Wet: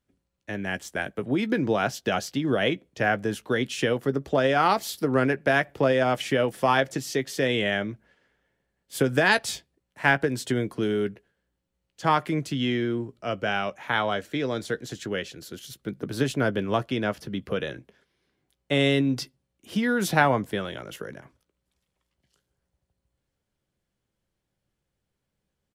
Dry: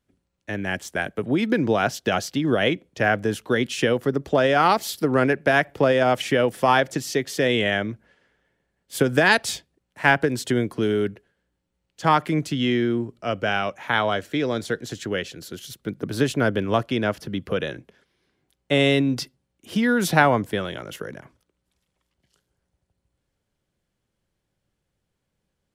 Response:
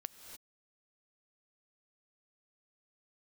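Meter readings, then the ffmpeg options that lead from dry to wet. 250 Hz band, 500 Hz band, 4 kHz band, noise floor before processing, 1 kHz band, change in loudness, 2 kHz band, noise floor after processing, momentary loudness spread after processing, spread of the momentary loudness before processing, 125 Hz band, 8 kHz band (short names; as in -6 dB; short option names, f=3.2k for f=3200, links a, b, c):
-3.5 dB, -3.5 dB, -3.0 dB, -78 dBFS, -3.5 dB, -3.5 dB, -3.0 dB, -81 dBFS, 12 LU, 13 LU, -3.0 dB, -3.5 dB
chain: -filter_complex "[0:a]asplit=2[a][b];[b]adelay=15,volume=-13dB[c];[a][c]amix=inputs=2:normalize=0,volume=-3.5dB"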